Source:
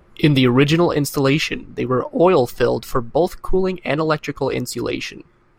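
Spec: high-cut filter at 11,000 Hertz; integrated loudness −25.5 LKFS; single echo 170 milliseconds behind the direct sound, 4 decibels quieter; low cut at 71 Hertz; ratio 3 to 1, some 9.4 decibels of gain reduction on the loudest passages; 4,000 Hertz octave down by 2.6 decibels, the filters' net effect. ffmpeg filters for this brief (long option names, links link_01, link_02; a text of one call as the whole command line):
ffmpeg -i in.wav -af "highpass=71,lowpass=11000,equalizer=frequency=4000:width_type=o:gain=-3.5,acompressor=threshold=-22dB:ratio=3,aecho=1:1:170:0.631,volume=-1dB" out.wav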